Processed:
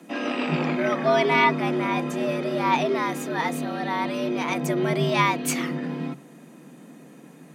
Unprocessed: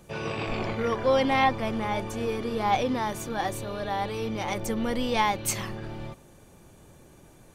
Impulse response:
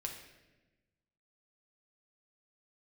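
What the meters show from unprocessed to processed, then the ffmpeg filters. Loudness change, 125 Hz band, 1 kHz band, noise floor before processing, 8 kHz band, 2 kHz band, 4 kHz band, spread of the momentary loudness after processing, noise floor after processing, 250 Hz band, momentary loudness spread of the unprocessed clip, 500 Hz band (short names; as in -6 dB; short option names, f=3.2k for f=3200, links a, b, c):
+3.5 dB, +4.5 dB, +2.5 dB, -54 dBFS, +0.5 dB, +6.0 dB, +2.5 dB, 9 LU, -48 dBFS, +5.0 dB, 10 LU, +3.5 dB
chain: -af "afreqshift=140,equalizer=f=125:t=o:w=1:g=6,equalizer=f=250:t=o:w=1:g=8,equalizer=f=2k:t=o:w=1:g=7"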